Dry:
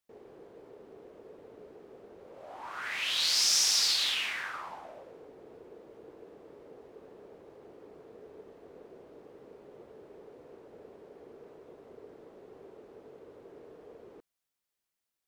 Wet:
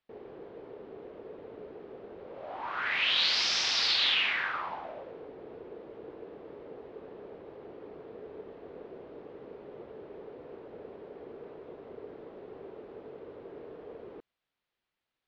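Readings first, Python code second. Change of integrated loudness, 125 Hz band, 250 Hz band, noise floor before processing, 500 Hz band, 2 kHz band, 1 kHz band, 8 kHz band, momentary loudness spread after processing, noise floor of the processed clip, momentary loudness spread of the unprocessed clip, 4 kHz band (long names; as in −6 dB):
−0.5 dB, +5.5 dB, +5.5 dB, below −85 dBFS, +5.5 dB, +5.5 dB, +5.5 dB, −12.0 dB, 22 LU, below −85 dBFS, 20 LU, +1.0 dB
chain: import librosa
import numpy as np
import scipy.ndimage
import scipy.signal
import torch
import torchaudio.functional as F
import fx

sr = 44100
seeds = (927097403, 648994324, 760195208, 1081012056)

y = scipy.signal.sosfilt(scipy.signal.butter(4, 3900.0, 'lowpass', fs=sr, output='sos'), x)
y = y * 10.0 ** (5.5 / 20.0)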